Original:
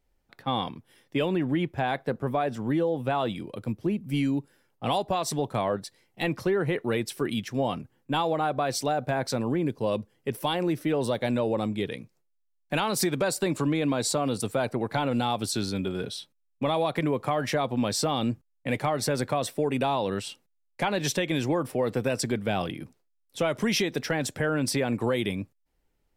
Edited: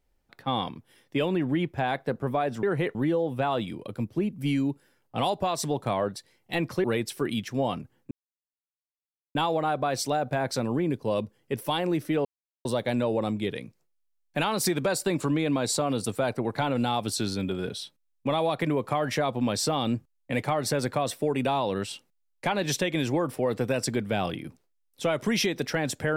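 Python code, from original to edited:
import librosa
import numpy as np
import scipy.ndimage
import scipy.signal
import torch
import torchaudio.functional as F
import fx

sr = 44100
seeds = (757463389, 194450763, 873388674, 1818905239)

y = fx.edit(x, sr, fx.move(start_s=6.52, length_s=0.32, to_s=2.63),
    fx.insert_silence(at_s=8.11, length_s=1.24),
    fx.insert_silence(at_s=11.01, length_s=0.4), tone=tone)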